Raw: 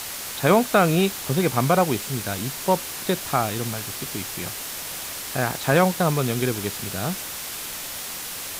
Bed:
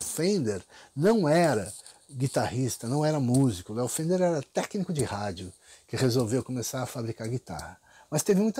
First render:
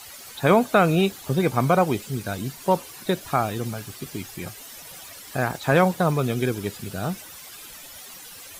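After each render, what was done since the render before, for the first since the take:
broadband denoise 13 dB, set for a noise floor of −33 dBFS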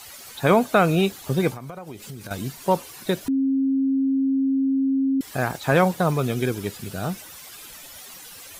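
0:01.50–0:02.31: downward compressor 16 to 1, threshold −32 dBFS
0:03.28–0:05.21: beep over 269 Hz −18 dBFS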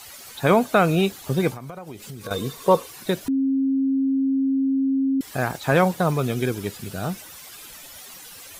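0:02.22–0:02.85: hollow resonant body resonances 470/1,100/3,600 Hz, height 17 dB → 14 dB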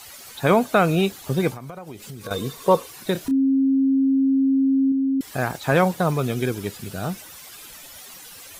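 0:03.12–0:04.92: double-tracking delay 30 ms −8 dB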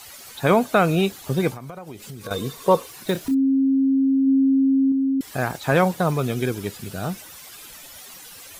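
0:02.81–0:03.36: one scale factor per block 5 bits
0:04.26–0:05.11: low-pass with resonance 570 Hz → 1,300 Hz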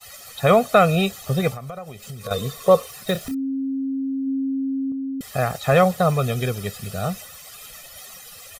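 comb filter 1.6 ms, depth 78%
downward expander −37 dBFS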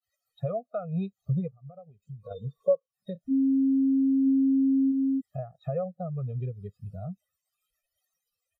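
downward compressor 5 to 1, threshold −27 dBFS, peak gain reduction 16 dB
every bin expanded away from the loudest bin 2.5 to 1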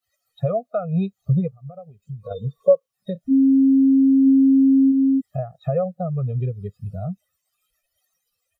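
level +8.5 dB

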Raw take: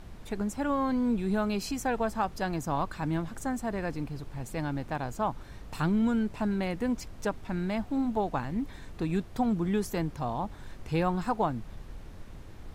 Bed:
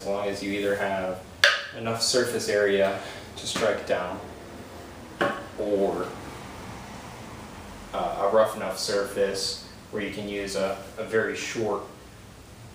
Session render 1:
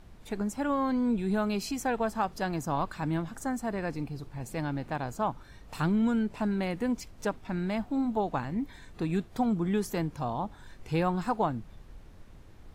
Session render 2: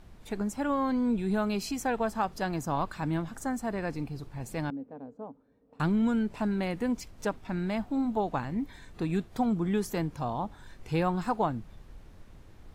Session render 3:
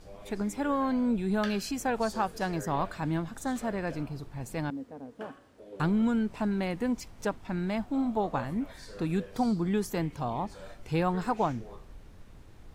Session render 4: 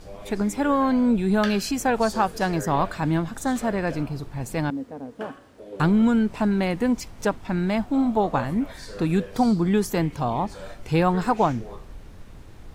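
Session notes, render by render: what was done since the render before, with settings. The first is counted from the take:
noise reduction from a noise print 6 dB
0:04.70–0:05.80: pair of resonant band-passes 350 Hz, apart 0.73 octaves
mix in bed −21.5 dB
level +7.5 dB

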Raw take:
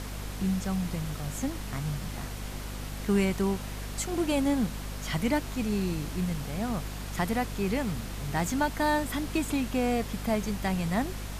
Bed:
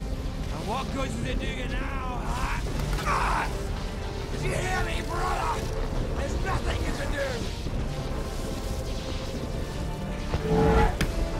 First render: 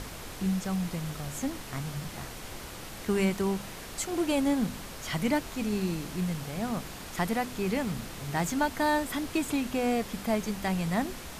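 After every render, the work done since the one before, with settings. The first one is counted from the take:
hum removal 50 Hz, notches 5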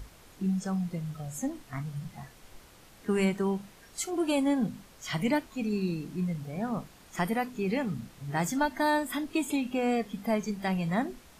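noise reduction from a noise print 13 dB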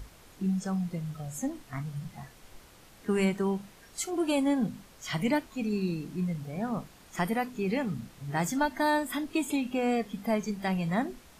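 no processing that can be heard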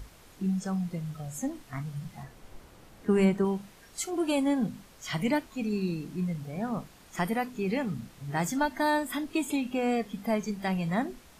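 0:02.23–0:03.45: tilt shelving filter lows +4 dB, about 1,400 Hz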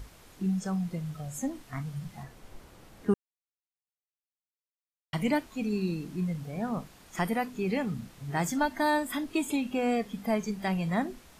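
0:03.14–0:05.13: silence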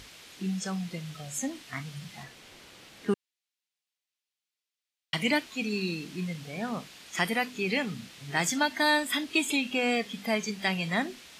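meter weighting curve D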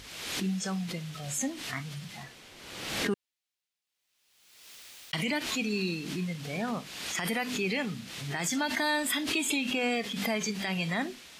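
brickwall limiter −20.5 dBFS, peak gain reduction 10.5 dB
background raised ahead of every attack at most 45 dB per second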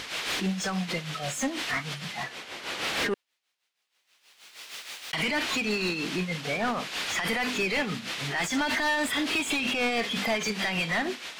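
amplitude tremolo 6.3 Hz, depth 62%
mid-hump overdrive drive 24 dB, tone 2,600 Hz, clips at −18 dBFS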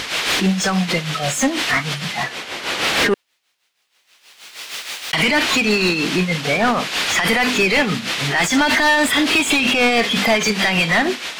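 level +11.5 dB

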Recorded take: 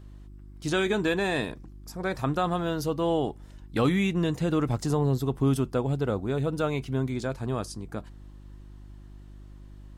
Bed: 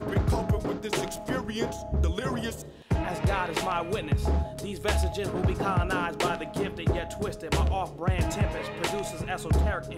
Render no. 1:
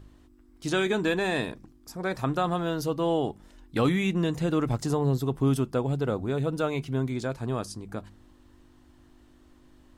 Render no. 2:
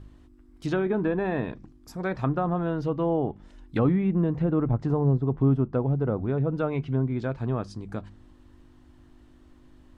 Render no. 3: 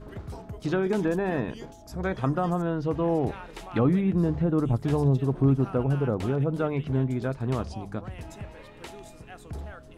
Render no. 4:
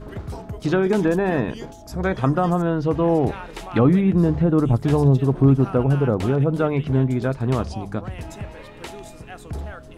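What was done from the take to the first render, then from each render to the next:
hum removal 50 Hz, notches 4
bass and treble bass +4 dB, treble −4 dB; treble cut that deepens with the level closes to 1,100 Hz, closed at −20.5 dBFS
mix in bed −13.5 dB
level +6.5 dB

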